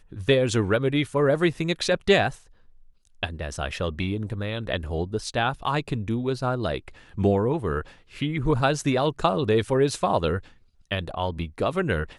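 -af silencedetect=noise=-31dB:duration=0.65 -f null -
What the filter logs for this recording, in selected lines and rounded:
silence_start: 2.30
silence_end: 3.23 | silence_duration: 0.93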